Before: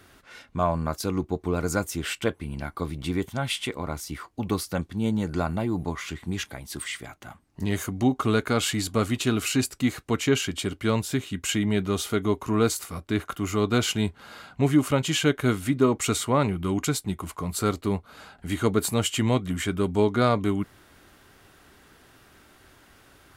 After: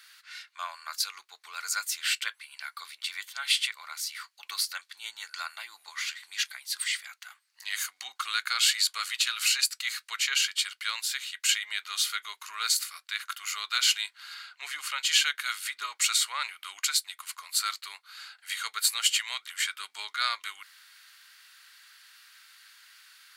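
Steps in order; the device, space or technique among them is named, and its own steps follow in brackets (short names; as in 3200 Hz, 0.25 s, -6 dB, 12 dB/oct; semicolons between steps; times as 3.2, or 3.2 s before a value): 14.34–15 high shelf 6000 Hz -5.5 dB; headphones lying on a table (HPF 1500 Hz 24 dB/oct; bell 4400 Hz +8.5 dB 0.32 oct); gain +3 dB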